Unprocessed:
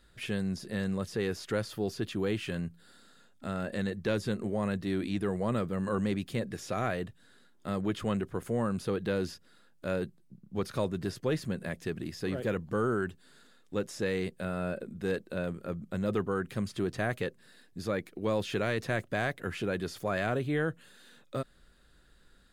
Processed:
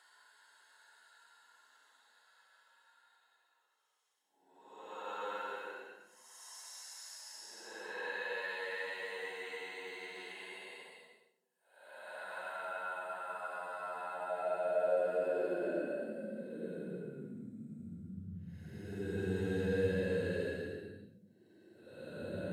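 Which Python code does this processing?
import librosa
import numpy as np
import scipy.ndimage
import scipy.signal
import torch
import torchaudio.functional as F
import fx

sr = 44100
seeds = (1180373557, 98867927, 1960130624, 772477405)

y = fx.paulstretch(x, sr, seeds[0], factor=11.0, window_s=0.1, from_s=13.3)
y = fx.filter_sweep_highpass(y, sr, from_hz=940.0, to_hz=90.0, start_s=14.04, end_s=17.89, q=4.3)
y = fx.notch_comb(y, sr, f0_hz=1200.0)
y = y * 10.0 ** (-5.5 / 20.0)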